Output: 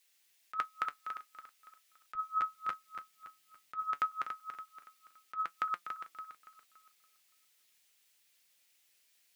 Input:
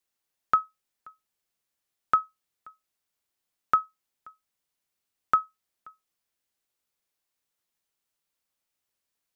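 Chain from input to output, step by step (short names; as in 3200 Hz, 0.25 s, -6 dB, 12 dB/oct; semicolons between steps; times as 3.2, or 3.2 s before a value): regenerating reverse delay 0.142 s, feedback 62%, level -10 dB; HPF 430 Hz 6 dB/oct, from 2.15 s 67 Hz, from 3.82 s 250 Hz; resonant high shelf 1600 Hz +7.5 dB, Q 1.5; negative-ratio compressor -34 dBFS, ratio -1; flange 0.35 Hz, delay 5.6 ms, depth 1.8 ms, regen +65%; gain +3.5 dB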